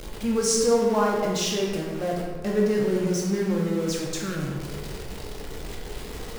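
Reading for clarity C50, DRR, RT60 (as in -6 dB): 1.5 dB, -2.0 dB, 1.4 s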